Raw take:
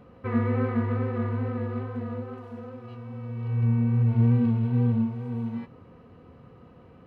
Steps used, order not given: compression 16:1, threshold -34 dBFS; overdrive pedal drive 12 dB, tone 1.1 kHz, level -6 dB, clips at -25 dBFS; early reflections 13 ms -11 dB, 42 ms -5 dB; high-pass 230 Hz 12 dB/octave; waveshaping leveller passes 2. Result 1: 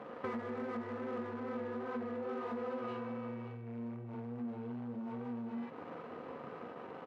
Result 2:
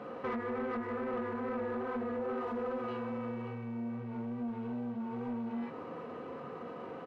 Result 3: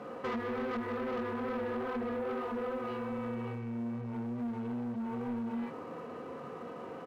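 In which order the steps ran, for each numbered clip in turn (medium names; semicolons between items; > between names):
waveshaping leveller > early reflections > overdrive pedal > compression > high-pass; early reflections > compression > high-pass > waveshaping leveller > overdrive pedal; early reflections > overdrive pedal > compression > high-pass > waveshaping leveller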